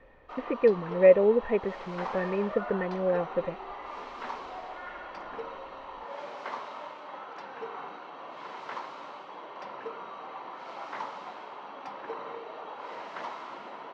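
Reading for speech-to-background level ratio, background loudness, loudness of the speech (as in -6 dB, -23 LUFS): 14.5 dB, -40.5 LUFS, -26.0 LUFS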